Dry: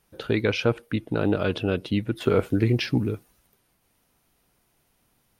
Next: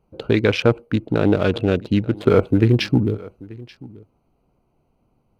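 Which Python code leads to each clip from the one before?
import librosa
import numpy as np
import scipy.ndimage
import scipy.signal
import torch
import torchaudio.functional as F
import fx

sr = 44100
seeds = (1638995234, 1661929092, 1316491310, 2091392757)

y = fx.wiener(x, sr, points=25)
y = y + 10.0 ** (-21.5 / 20.0) * np.pad(y, (int(884 * sr / 1000.0), 0))[:len(y)]
y = y * librosa.db_to_amplitude(6.5)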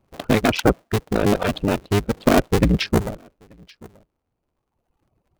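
y = fx.cycle_switch(x, sr, every=2, mode='inverted')
y = fx.dereverb_blind(y, sr, rt60_s=1.9)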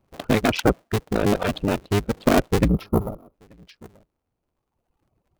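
y = fx.spec_box(x, sr, start_s=2.68, length_s=0.66, low_hz=1400.0, high_hz=10000.0, gain_db=-17)
y = y * librosa.db_to_amplitude(-2.0)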